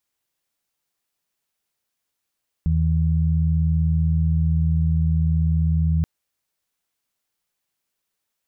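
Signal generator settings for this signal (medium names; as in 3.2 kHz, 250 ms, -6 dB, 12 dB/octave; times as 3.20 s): steady additive tone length 3.38 s, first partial 80.4 Hz, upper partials -2.5 dB, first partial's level -18 dB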